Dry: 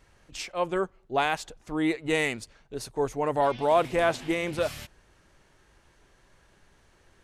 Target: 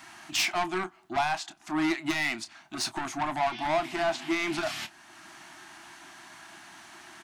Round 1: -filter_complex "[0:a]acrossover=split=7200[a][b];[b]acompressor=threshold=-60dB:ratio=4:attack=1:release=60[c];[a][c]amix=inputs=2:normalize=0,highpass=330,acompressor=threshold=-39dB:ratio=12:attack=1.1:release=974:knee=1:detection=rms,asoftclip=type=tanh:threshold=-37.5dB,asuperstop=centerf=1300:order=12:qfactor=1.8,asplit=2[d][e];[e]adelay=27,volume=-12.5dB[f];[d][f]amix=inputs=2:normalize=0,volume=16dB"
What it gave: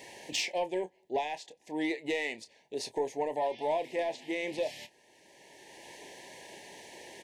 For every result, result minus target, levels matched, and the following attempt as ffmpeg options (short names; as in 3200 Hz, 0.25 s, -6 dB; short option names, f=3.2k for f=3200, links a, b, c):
compressor: peak gain reduction +10 dB; 500 Hz band +5.0 dB
-filter_complex "[0:a]acrossover=split=7200[a][b];[b]acompressor=threshold=-60dB:ratio=4:attack=1:release=60[c];[a][c]amix=inputs=2:normalize=0,highpass=330,acompressor=threshold=-28dB:ratio=12:attack=1.1:release=974:knee=1:detection=rms,asoftclip=type=tanh:threshold=-37.5dB,asuperstop=centerf=1300:order=12:qfactor=1.8,asplit=2[d][e];[e]adelay=27,volume=-12.5dB[f];[d][f]amix=inputs=2:normalize=0,volume=16dB"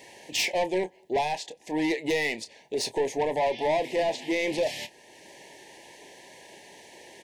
500 Hz band +5.0 dB
-filter_complex "[0:a]acrossover=split=7200[a][b];[b]acompressor=threshold=-60dB:ratio=4:attack=1:release=60[c];[a][c]amix=inputs=2:normalize=0,highpass=330,acompressor=threshold=-28dB:ratio=12:attack=1.1:release=974:knee=1:detection=rms,asoftclip=type=tanh:threshold=-37.5dB,asuperstop=centerf=480:order=12:qfactor=1.8,asplit=2[d][e];[e]adelay=27,volume=-12.5dB[f];[d][f]amix=inputs=2:normalize=0,volume=16dB"